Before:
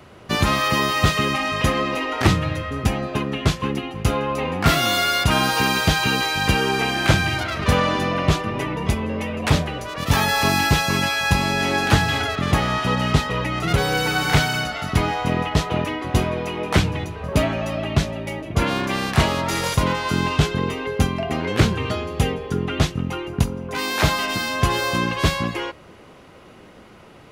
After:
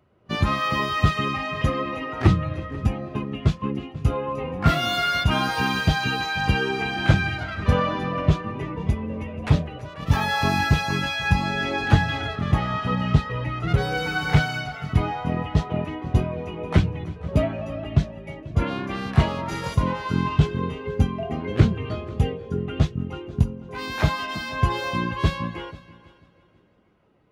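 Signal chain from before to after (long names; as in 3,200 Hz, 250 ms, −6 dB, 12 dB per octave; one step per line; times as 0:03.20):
echo machine with several playback heads 163 ms, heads second and third, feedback 44%, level −15 dB
every bin expanded away from the loudest bin 1.5 to 1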